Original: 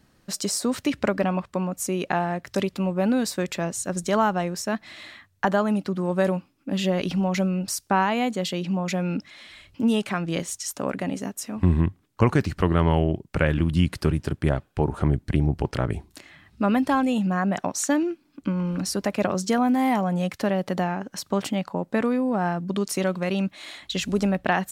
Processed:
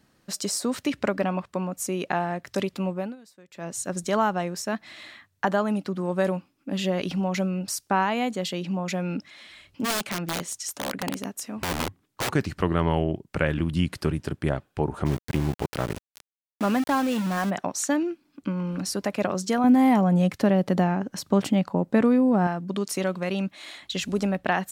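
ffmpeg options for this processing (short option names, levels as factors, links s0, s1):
-filter_complex "[0:a]asplit=3[s0][s1][s2];[s0]afade=t=out:st=9.84:d=0.02[s3];[s1]aeval=exprs='(mod(9.44*val(0)+1,2)-1)/9.44':c=same,afade=t=in:st=9.84:d=0.02,afade=t=out:st=12.29:d=0.02[s4];[s2]afade=t=in:st=12.29:d=0.02[s5];[s3][s4][s5]amix=inputs=3:normalize=0,asplit=3[s6][s7][s8];[s6]afade=t=out:st=15.05:d=0.02[s9];[s7]aeval=exprs='val(0)*gte(abs(val(0)),0.0422)':c=same,afade=t=in:st=15.05:d=0.02,afade=t=out:st=17.49:d=0.02[s10];[s8]afade=t=in:st=17.49:d=0.02[s11];[s9][s10][s11]amix=inputs=3:normalize=0,asettb=1/sr,asplit=3[s12][s13][s14];[s12]atrim=end=19.644[s15];[s13]atrim=start=19.64:end=22.47,asetpts=PTS-STARTPTS,afade=t=in:d=0.004:c=qsin,afade=t=out:st=2.826:d=0.004:c=qsin,lowshelf=f=400:g=9.5[s16];[s14]atrim=start=22.466[s17];[s15][s16]acrossfade=d=0.004:c1=hsin:c2=qsin[s18];[s18][s17]acrossfade=d=0.004:c1=qsin:c2=hsin,asplit=3[s19][s20][s21];[s19]atrim=end=3.16,asetpts=PTS-STARTPTS,afade=t=out:st=2.89:d=0.27:silence=0.0668344[s22];[s20]atrim=start=3.16:end=3.51,asetpts=PTS-STARTPTS,volume=0.0668[s23];[s21]atrim=start=3.51,asetpts=PTS-STARTPTS,afade=t=in:d=0.27:silence=0.0668344[s24];[s22][s23][s24]concat=n=3:v=0:a=1,lowshelf=f=74:g=-10,volume=0.841"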